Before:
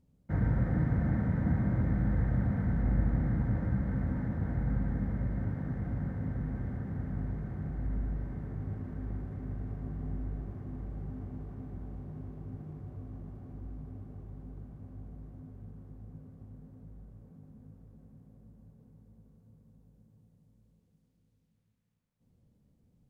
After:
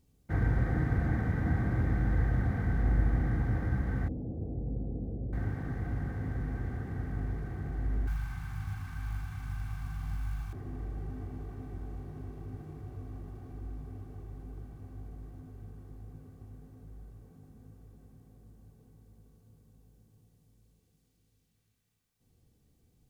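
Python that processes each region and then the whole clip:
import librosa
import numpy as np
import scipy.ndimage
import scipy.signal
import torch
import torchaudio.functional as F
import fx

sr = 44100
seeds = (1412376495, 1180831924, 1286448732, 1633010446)

y = fx.chain(x, sr, fx.zero_step(step_db=-44.5),
    fx.steep_lowpass(hz=600.0, slope=36),
    fx.low_shelf(hz=150.0, db=-8.0), at=(4.08, 5.33))
y = fx.chain(y, sr, fx.curve_eq(hz=(150.0, 520.0, 820.0, 2100.0), db=(0, -27, 3, 10)),
    fx.quant_float(bits=6),
    fx.notch(hz=1900.0, q=5.8), at=(8.07, 10.53))
y = fx.high_shelf(y, sr, hz=2000.0, db=10.5)
y = y + 0.45 * np.pad(y, (int(2.6 * sr / 1000.0), 0))[:len(y)]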